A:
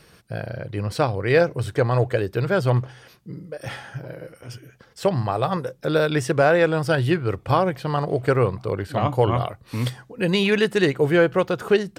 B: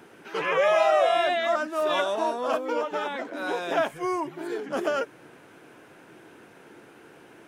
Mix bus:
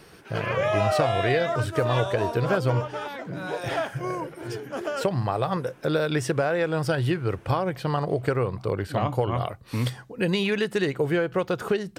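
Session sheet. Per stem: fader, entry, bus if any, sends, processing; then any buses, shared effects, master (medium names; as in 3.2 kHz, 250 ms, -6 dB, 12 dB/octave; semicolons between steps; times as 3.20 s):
0.0 dB, 0.00 s, no send, compression 10:1, threshold -20 dBFS, peak gain reduction 9 dB
-3.5 dB, 0.00 s, no send, none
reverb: none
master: none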